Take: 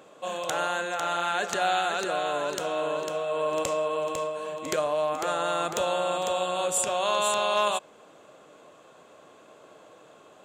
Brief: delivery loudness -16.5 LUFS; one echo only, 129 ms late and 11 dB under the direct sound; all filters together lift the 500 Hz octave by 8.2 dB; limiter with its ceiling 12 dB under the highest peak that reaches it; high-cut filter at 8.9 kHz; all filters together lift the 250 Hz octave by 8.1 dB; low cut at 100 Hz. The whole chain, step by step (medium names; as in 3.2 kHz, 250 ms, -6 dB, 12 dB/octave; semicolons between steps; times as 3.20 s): high-pass 100 Hz; low-pass 8.9 kHz; peaking EQ 250 Hz +8 dB; peaking EQ 500 Hz +8.5 dB; peak limiter -20 dBFS; delay 129 ms -11 dB; trim +11 dB